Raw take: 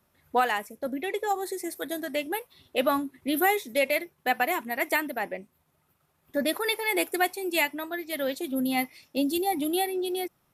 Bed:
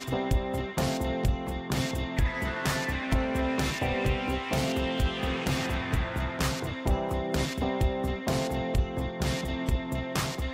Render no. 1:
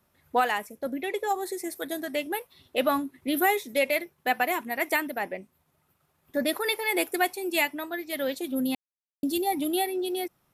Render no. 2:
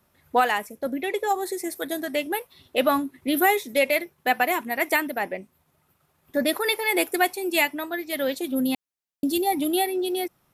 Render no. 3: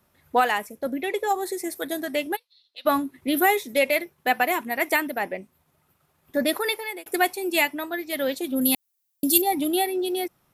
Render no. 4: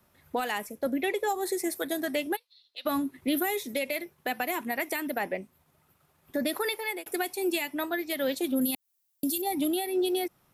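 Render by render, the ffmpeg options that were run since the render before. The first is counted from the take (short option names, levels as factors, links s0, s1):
-filter_complex "[0:a]asplit=3[s0][s1][s2];[s0]atrim=end=8.75,asetpts=PTS-STARTPTS,afade=t=out:st=8.746:d=0.004:c=hsin[s3];[s1]atrim=start=8.75:end=9.23,asetpts=PTS-STARTPTS,volume=0[s4];[s2]atrim=start=9.23,asetpts=PTS-STARTPTS,afade=t=in:d=0.004:c=hsin[s5];[s3][s4][s5]concat=n=3:v=0:a=1"
-af "volume=1.5"
-filter_complex "[0:a]asplit=3[s0][s1][s2];[s0]afade=t=out:st=2.35:d=0.02[s3];[s1]bandpass=f=4200:t=q:w=6.4,afade=t=in:st=2.35:d=0.02,afade=t=out:st=2.85:d=0.02[s4];[s2]afade=t=in:st=2.85:d=0.02[s5];[s3][s4][s5]amix=inputs=3:normalize=0,asettb=1/sr,asplit=3[s6][s7][s8];[s6]atrim=end=8.614[s9];[s7]atrim=start=8.61:end=9.42,asetpts=PTS-STARTPTS,afade=t=in:d=0.004:c=qsin,afade=t=out:st=0.806:d=0.004:c=qsin,aemphasis=mode=production:type=75kf[s10];[s8]atrim=start=9.416[s11];[s9][s10]acrossfade=d=0.004:c1=hsin:c2=qsin[s12];[s12][s11]acrossfade=d=0.004:c1=qsin:c2=hsin,asplit=2[s13][s14];[s13]atrim=end=7.06,asetpts=PTS-STARTPTS,afade=t=out:st=6.6:d=0.46[s15];[s14]atrim=start=7.06,asetpts=PTS-STARTPTS,afade=t=in:d=0.004:c=hsin[s16];[s15][s16]concat=n=2:v=0:a=1"
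-filter_complex "[0:a]acrossover=split=370|3000[s0][s1][s2];[s1]acompressor=threshold=0.0562:ratio=6[s3];[s0][s3][s2]amix=inputs=3:normalize=0,alimiter=limit=0.112:level=0:latency=1:release=174"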